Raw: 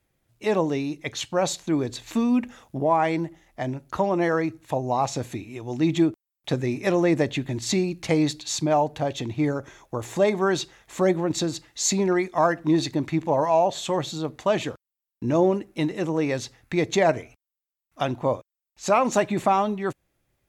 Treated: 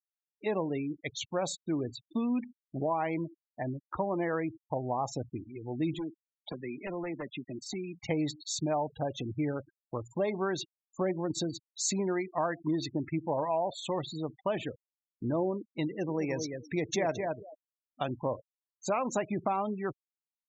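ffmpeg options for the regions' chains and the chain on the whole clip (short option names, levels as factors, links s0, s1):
-filter_complex "[0:a]asettb=1/sr,asplit=3[s0][s1][s2];[s0]atrim=end=5.944[s3];[s1]atrim=start=5.94:end=7.98,asetpts=PTS-STARTPTS,afade=t=in:d=0.004:c=qsin,afade=t=out:st=2.036:d=0.004:c=qsin,highpass=f=150:w=0.5412,highpass=f=150:w=1.3066,acrossover=split=300|810|6100[s4][s5][s6][s7];[s4]acompressor=threshold=0.0158:ratio=3[s8];[s5]acompressor=threshold=0.0158:ratio=3[s9];[s6]acompressor=threshold=0.0158:ratio=3[s10];[s7]acompressor=threshold=0.00794:ratio=3[s11];[s8][s9][s10][s11]amix=inputs=4:normalize=0,aeval=exprs='0.0631*(abs(mod(val(0)/0.0631+3,4)-2)-1)':c=same[s12];[s2]atrim=start=7.976[s13];[s3][s12]acrossfade=d=0.004:c1=hsin:c2=qsin[s14];[s14][s13]acrossfade=d=0.004:c1=qsin:c2=hsin,asettb=1/sr,asplit=3[s15][s16][s17];[s15]atrim=end=15.874[s18];[s16]atrim=start=15.87:end=18.21,asetpts=PTS-STARTPTS,afade=t=in:d=0.004:c=qsin,afade=t=out:st=2.336:d=0.004:c=qsin,highpass=62,equalizer=f=5700:w=6.6:g=9.5,asplit=2[s19][s20];[s20]adelay=216,lowpass=f=4600:p=1,volume=0.447,asplit=2[s21][s22];[s22]adelay=216,lowpass=f=4600:p=1,volume=0.17,asplit=2[s23][s24];[s24]adelay=216,lowpass=f=4600:p=1,volume=0.17[s25];[s19][s21][s23][s25]amix=inputs=4:normalize=0,atrim=end_sample=103194[s26];[s17]atrim=start=18.206[s27];[s18][s26]acrossfade=d=0.004:c1=hsin:c2=qsin[s28];[s28][s27]acrossfade=d=0.004:c1=qsin:c2=hsin,afftfilt=real='re*gte(hypot(re,im),0.0355)':imag='im*gte(hypot(re,im),0.0355)':win_size=1024:overlap=0.75,acompressor=threshold=0.0794:ratio=2.5,volume=0.501"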